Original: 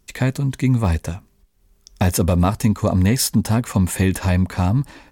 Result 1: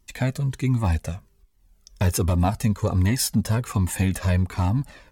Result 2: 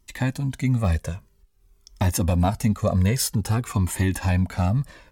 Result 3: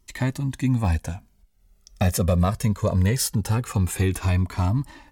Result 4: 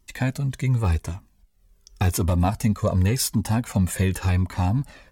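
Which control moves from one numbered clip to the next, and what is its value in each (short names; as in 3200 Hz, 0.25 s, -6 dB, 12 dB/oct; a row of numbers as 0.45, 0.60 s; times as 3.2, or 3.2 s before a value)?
cascading flanger, rate: 1.3, 0.51, 0.21, 0.89 Hz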